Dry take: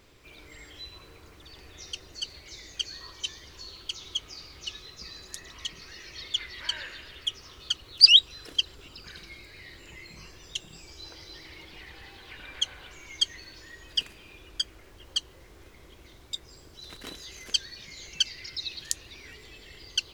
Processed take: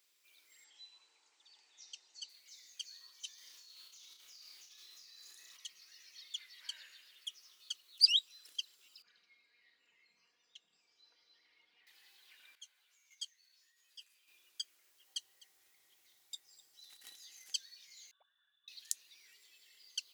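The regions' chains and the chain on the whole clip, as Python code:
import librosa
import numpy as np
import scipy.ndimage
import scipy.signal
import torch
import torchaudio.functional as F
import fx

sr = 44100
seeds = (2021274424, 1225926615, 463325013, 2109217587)

y = fx.chain(x, sr, fx.cheby1_bandpass(low_hz=220.0, high_hz=7900.0, order=4),
    fx.peak_eq(hz=860.0, db=14.0, octaves=0.27), at=(0.64, 2.29))
y = fx.chain(y, sr, fx.over_compress(threshold_db=-48.0, ratio=-1.0),
    fx.room_flutter(wall_m=5.6, rt60_s=0.46), at=(3.38, 5.57))
y = fx.chain(y, sr, fx.spacing_loss(db_at_10k=31),
    fx.comb(ms=4.2, depth=0.58), at=(9.02, 11.87))
y = fx.chain(y, sr, fx.low_shelf(hz=250.0, db=-11.5),
    fx.level_steps(step_db=11),
    fx.ensemble(), at=(12.55, 14.28))
y = fx.chain(y, sr, fx.low_shelf(hz=110.0, db=10.0),
    fx.small_body(hz=(780.0, 1900.0), ring_ms=95, db=13),
    fx.echo_single(ms=254, db=-20.5), at=(15.06, 17.53))
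y = fx.chain(y, sr, fx.vowel_filter(vowel='u'),
    fx.freq_invert(carrier_hz=3800), at=(18.11, 18.68))
y = scipy.signal.sosfilt(scipy.signal.butter(2, 100.0, 'highpass', fs=sr, output='sos'), y)
y = np.diff(y, prepend=0.0)
y = y * 10.0 ** (-7.5 / 20.0)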